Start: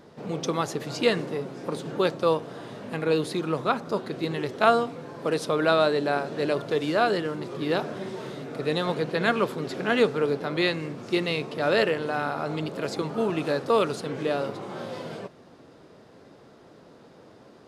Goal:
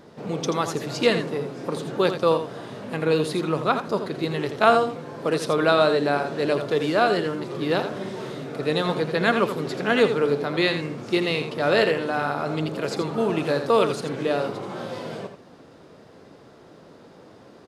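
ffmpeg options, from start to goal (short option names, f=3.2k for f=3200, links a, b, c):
-af "aecho=1:1:83:0.355,volume=2.5dB"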